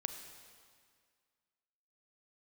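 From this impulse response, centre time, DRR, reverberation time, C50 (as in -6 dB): 31 ms, 6.5 dB, 1.9 s, 7.5 dB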